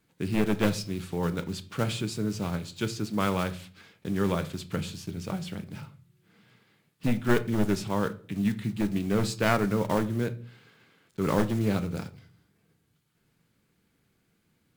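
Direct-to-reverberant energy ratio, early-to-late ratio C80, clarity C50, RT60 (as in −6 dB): 10.0 dB, 22.5 dB, 18.0 dB, 0.45 s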